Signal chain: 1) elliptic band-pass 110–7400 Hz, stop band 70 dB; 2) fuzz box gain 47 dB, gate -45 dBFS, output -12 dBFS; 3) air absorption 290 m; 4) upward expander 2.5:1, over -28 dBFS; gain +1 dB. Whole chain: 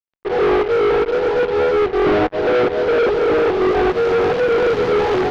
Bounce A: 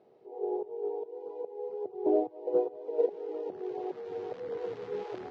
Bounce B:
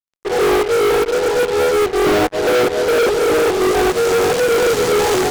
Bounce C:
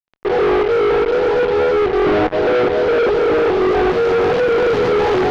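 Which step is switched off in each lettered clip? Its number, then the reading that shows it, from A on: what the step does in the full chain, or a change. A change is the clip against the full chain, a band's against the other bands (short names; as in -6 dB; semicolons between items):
2, distortion -3 dB; 3, 4 kHz band +6.5 dB; 4, loudness change +1.5 LU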